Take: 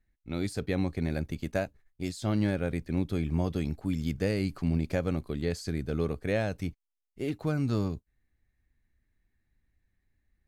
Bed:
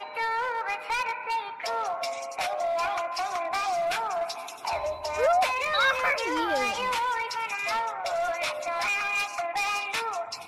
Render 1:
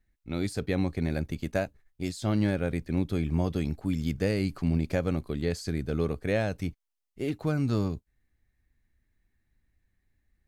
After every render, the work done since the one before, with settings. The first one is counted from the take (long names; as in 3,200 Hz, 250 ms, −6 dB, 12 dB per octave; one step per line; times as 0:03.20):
level +1.5 dB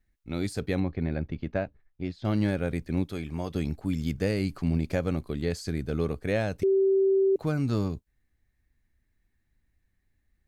0:00.80–0:02.25: high-frequency loss of the air 290 metres
0:03.04–0:03.54: low-shelf EQ 370 Hz −8.5 dB
0:06.63–0:07.36: beep over 387 Hz −19 dBFS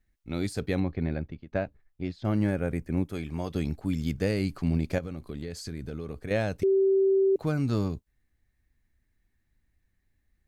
0:01.11–0:01.52: fade out, to −23 dB
0:02.23–0:03.14: parametric band 3,900 Hz −12 dB 0.76 octaves
0:04.98–0:06.31: downward compressor 12 to 1, threshold −31 dBFS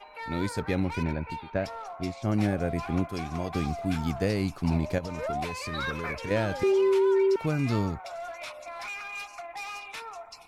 mix in bed −10 dB